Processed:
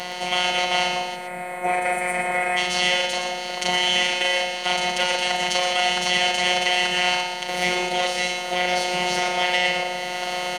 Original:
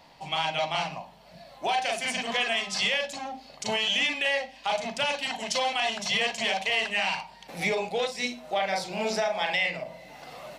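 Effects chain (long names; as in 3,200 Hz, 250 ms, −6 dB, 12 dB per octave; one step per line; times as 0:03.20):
compressor on every frequency bin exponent 0.4
mains-hum notches 60/120/180 Hz
gain on a spectral selection 0:01.16–0:02.57, 2,600–7,300 Hz −21 dB
phases set to zero 180 Hz
in parallel at −11.5 dB: dead-zone distortion −35 dBFS
on the sum: EQ curve with evenly spaced ripples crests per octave 1.9, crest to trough 7 dB
on a send: single-tap delay 119 ms −8 dB
on the sum: level −1 dB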